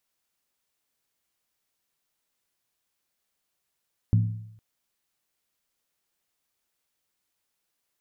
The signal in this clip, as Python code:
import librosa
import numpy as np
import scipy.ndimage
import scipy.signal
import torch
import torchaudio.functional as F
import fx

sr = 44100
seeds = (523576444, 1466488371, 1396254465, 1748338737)

y = fx.strike_skin(sr, length_s=0.46, level_db=-15, hz=109.0, decay_s=0.76, tilt_db=8.0, modes=5)